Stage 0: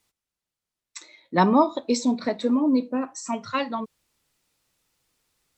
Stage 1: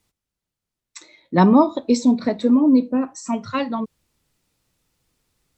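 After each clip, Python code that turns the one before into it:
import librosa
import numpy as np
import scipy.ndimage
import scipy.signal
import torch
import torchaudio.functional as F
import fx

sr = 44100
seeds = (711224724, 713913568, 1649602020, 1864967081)

y = fx.low_shelf(x, sr, hz=360.0, db=10.0)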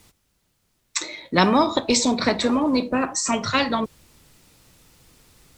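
y = fx.spectral_comp(x, sr, ratio=2.0)
y = F.gain(torch.from_numpy(y), 1.0).numpy()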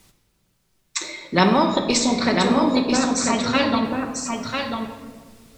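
y = x + 10.0 ** (-5.0 / 20.0) * np.pad(x, (int(995 * sr / 1000.0), 0))[:len(x)]
y = fx.room_shoebox(y, sr, seeds[0], volume_m3=1600.0, walls='mixed', distance_m=1.1)
y = F.gain(torch.from_numpy(y), -1.0).numpy()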